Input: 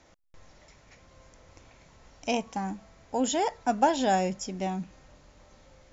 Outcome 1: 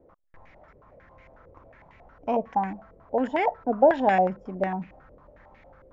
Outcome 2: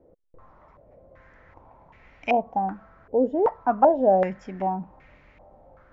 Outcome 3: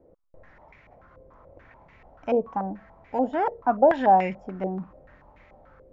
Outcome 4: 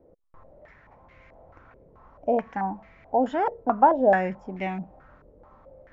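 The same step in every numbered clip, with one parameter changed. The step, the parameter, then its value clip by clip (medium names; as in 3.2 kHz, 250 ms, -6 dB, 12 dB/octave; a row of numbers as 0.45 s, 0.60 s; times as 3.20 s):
step-sequenced low-pass, rate: 11 Hz, 2.6 Hz, 6.9 Hz, 4.6 Hz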